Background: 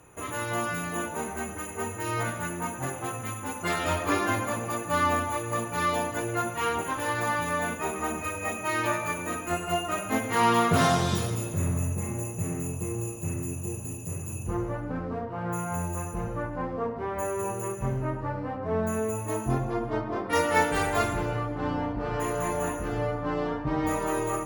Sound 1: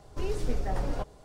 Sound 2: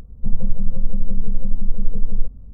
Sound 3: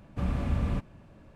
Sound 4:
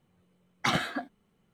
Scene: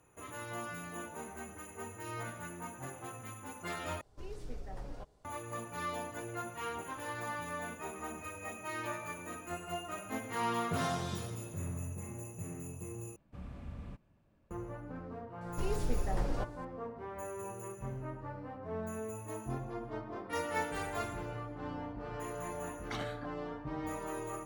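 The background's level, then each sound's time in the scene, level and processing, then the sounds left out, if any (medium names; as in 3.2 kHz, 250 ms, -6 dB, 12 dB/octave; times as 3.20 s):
background -12 dB
4.01 s: replace with 1 -14 dB
13.16 s: replace with 3 -17 dB
15.41 s: add 1 -3.5 dB
22.26 s: add 4 -15 dB
not used: 2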